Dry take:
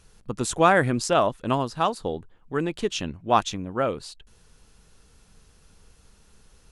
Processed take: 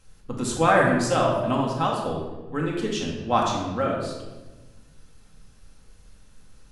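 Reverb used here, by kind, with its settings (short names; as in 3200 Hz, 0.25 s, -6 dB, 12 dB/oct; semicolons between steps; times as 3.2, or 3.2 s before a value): shoebox room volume 740 m³, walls mixed, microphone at 2.1 m; gain -4.5 dB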